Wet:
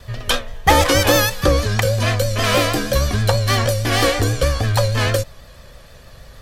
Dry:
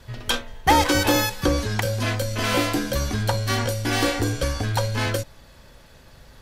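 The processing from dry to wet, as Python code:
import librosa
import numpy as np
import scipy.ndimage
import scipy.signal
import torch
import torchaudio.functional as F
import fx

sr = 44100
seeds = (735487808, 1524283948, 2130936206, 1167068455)

y = x + 0.41 * np.pad(x, (int(1.7 * sr / 1000.0), 0))[:len(x)]
y = fx.vibrato(y, sr, rate_hz=6.3, depth_cents=61.0)
y = y * 10.0 ** (5.0 / 20.0)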